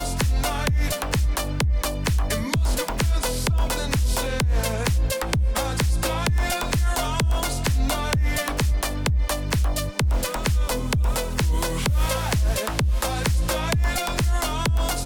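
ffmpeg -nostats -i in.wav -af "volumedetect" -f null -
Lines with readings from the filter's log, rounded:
mean_volume: -22.0 dB
max_volume: -11.2 dB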